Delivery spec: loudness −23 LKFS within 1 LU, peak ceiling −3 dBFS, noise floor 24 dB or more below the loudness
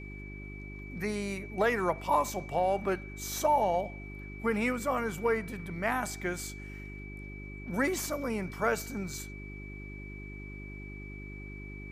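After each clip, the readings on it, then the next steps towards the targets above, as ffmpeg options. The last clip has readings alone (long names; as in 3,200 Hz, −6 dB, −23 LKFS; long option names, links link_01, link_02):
mains hum 50 Hz; hum harmonics up to 400 Hz; level of the hum −41 dBFS; interfering tone 2,300 Hz; level of the tone −47 dBFS; integrated loudness −32.0 LKFS; sample peak −14.5 dBFS; target loudness −23.0 LKFS
→ -af "bandreject=frequency=50:width_type=h:width=4,bandreject=frequency=100:width_type=h:width=4,bandreject=frequency=150:width_type=h:width=4,bandreject=frequency=200:width_type=h:width=4,bandreject=frequency=250:width_type=h:width=4,bandreject=frequency=300:width_type=h:width=4,bandreject=frequency=350:width_type=h:width=4,bandreject=frequency=400:width_type=h:width=4"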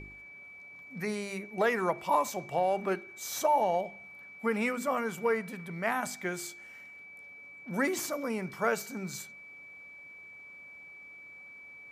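mains hum none found; interfering tone 2,300 Hz; level of the tone −47 dBFS
→ -af "bandreject=frequency=2300:width=30"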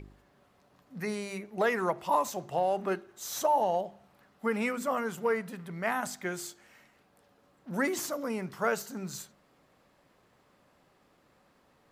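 interfering tone none found; integrated loudness −32.0 LKFS; sample peak −15.0 dBFS; target loudness −23.0 LKFS
→ -af "volume=9dB"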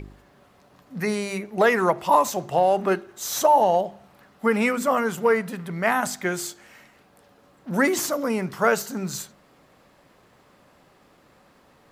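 integrated loudness −23.0 LKFS; sample peak −6.0 dBFS; background noise floor −58 dBFS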